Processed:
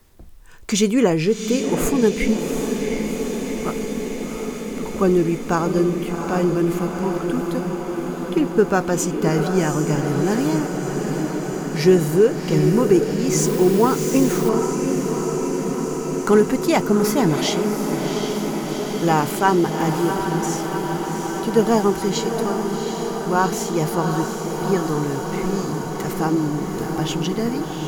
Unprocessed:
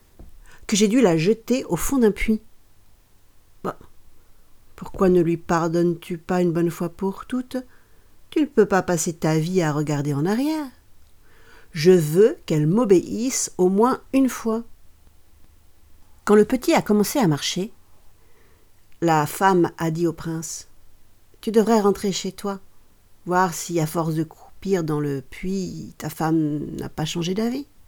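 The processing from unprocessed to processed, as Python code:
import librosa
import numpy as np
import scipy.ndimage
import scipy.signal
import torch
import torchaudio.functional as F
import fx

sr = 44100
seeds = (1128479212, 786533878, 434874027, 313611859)

y = fx.echo_diffused(x, sr, ms=746, feedback_pct=79, wet_db=-6.0)
y = fx.quant_dither(y, sr, seeds[0], bits=6, dither='triangular', at=(13.38, 14.49))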